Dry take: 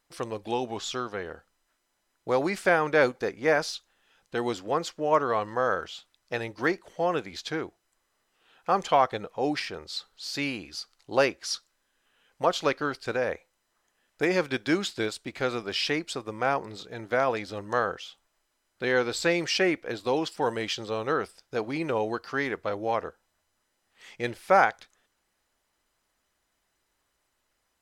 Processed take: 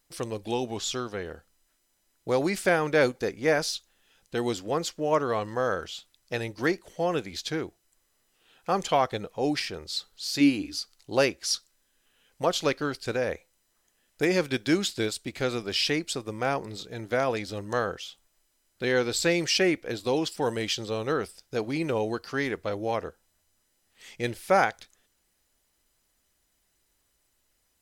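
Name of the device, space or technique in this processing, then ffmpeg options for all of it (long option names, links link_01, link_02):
smiley-face EQ: -filter_complex "[0:a]asettb=1/sr,asplit=3[link_01][link_02][link_03];[link_01]atrim=end=10.404[link_04];[link_02]atrim=start=10.4:end=10.81,asetpts=PTS-STARTPTS,afade=type=in:duration=0.004:curve=qsin,afade=type=out:start_time=0.406:duration=0.004:curve=qsin,equalizer=frequency=290:width_type=o:width=0.22:gain=14[link_05];[link_03]atrim=start=10.806[link_06];[link_04][link_05]acrossfade=duration=0.004:curve1=hsin:curve2=qsin[link_07];[link_07][link_06]acrossfade=duration=0.004:curve1=qsin:curve2=hsin,lowshelf=frequency=110:gain=5,equalizer=frequency=1100:width_type=o:width=1.8:gain=-6,highshelf=frequency=7600:gain=8,volume=2dB"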